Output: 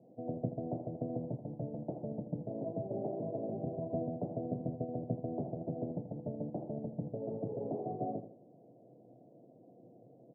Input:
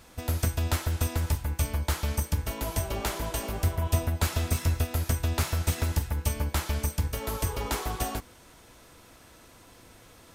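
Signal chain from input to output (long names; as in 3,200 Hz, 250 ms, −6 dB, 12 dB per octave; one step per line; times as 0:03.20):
Chebyshev band-pass filter 120–720 Hz, order 5
repeating echo 81 ms, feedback 33%, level −11 dB
level −1 dB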